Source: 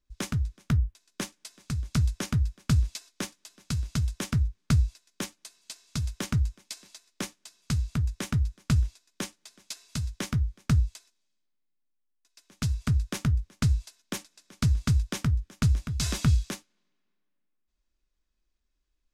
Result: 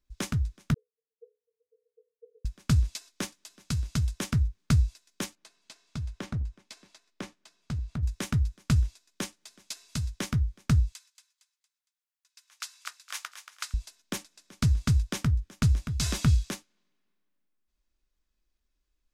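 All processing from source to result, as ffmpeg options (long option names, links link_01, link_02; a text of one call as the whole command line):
ffmpeg -i in.wav -filter_complex "[0:a]asettb=1/sr,asplit=3[link_01][link_02][link_03];[link_01]atrim=end=0.744[link_04];[link_02]atrim=start=0.74:end=2.45,asetpts=PTS-STARTPTS,afade=type=in:duration=0.004:curve=qsin,afade=type=out:start_time=1.706:duration=0.004:curve=qsin,acompressor=threshold=-27dB:ratio=6:attack=3.2:release=140:knee=1:detection=peak,asuperpass=centerf=460:order=20:qfactor=6.7[link_05];[link_03]atrim=start=2.446[link_06];[link_04][link_05]acrossfade=duration=0.004:curve1=hsin:curve2=qsin[link_07];[link_07][link_06]acrossfade=duration=0.004:curve1=qsin:curve2=hsin,asettb=1/sr,asplit=3[link_08][link_09][link_10];[link_08]atrim=end=5.354[link_11];[link_09]atrim=start=5.35:end=8.03,asetpts=PTS-STARTPTS,afade=type=in:duration=0.004:curve=qsin,afade=type=out:start_time=2.676:duration=0.004:curve=qsin,lowpass=frequency=2100:poles=1,acompressor=threshold=-37dB:ratio=1.5:attack=3.2:release=140:knee=1:detection=peak,aeval=exprs='clip(val(0),-1,0.0447)':channel_layout=same[link_12];[link_10]atrim=start=8.026[link_13];[link_11][link_12]acrossfade=duration=0.004:curve1=hsin:curve2=qsin[link_14];[link_14][link_13]acrossfade=duration=0.004:curve1=qsin:curve2=hsin,asettb=1/sr,asplit=3[link_15][link_16][link_17];[link_15]atrim=end=10.924[link_18];[link_16]atrim=start=10.92:end=13.74,asetpts=PTS-STARTPTS,afade=type=in:duration=0.004:curve=qsin,afade=type=out:start_time=2.816:duration=0.004:curve=qsin,highpass=frequency=990:width=0.5412,highpass=frequency=990:width=1.3066,aecho=1:1:230|460|690|920:0.316|0.114|0.041|0.0148,atrim=end_sample=124362[link_19];[link_17]atrim=start=13.736[link_20];[link_18][link_19]acrossfade=duration=0.004:curve1=hsin:curve2=qsin[link_21];[link_21][link_20]acrossfade=duration=0.004:curve1=qsin:curve2=hsin" out.wav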